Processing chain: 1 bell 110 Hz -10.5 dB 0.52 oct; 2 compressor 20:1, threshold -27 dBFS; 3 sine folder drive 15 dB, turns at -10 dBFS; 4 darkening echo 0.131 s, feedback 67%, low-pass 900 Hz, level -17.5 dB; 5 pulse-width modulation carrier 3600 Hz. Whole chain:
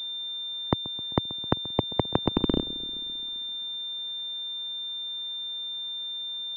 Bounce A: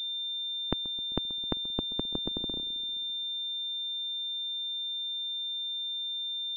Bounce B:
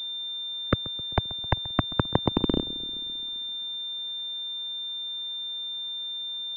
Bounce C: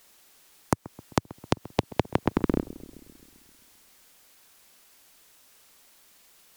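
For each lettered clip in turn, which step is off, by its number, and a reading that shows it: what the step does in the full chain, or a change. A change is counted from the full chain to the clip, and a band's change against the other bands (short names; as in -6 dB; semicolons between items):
3, crest factor change +2.0 dB; 2, mean gain reduction 4.5 dB; 5, 4 kHz band -19.5 dB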